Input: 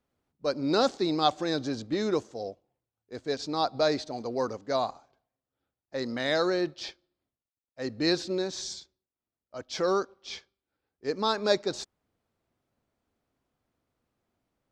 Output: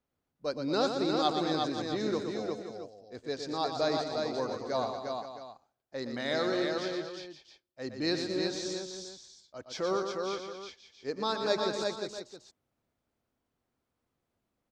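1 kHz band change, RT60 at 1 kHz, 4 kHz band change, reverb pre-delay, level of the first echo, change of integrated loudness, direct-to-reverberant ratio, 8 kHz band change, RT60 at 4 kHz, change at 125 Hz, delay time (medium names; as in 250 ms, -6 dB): -2.5 dB, no reverb, -2.5 dB, no reverb, -7.0 dB, -3.5 dB, no reverb, -2.5 dB, no reverb, -2.5 dB, 118 ms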